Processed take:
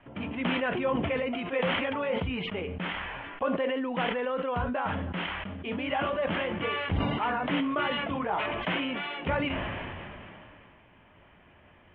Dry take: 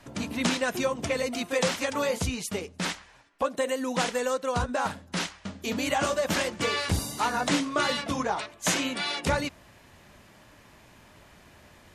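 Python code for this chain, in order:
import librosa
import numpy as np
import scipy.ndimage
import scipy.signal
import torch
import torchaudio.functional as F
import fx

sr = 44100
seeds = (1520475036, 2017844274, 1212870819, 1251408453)

y = scipy.signal.sosfilt(scipy.signal.cheby1(6, 1.0, 3200.0, 'lowpass', fs=sr, output='sos'), x)
y = fx.comb_fb(y, sr, f0_hz=90.0, decay_s=0.28, harmonics='all', damping=0.0, mix_pct=40)
y = fx.sustainer(y, sr, db_per_s=21.0)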